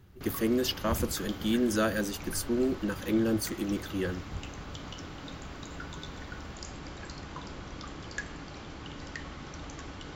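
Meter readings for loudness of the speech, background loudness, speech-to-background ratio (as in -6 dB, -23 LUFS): -30.5 LUFS, -42.5 LUFS, 12.0 dB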